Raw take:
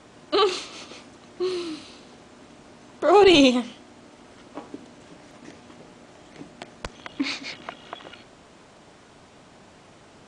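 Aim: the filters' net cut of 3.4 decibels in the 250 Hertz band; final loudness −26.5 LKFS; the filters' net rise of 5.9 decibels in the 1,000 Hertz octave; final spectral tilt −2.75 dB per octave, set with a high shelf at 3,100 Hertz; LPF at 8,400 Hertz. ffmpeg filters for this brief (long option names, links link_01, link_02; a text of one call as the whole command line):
ffmpeg -i in.wav -af "lowpass=8400,equalizer=frequency=250:width_type=o:gain=-5.5,equalizer=frequency=1000:width_type=o:gain=8,highshelf=frequency=3100:gain=3.5,volume=-6dB" out.wav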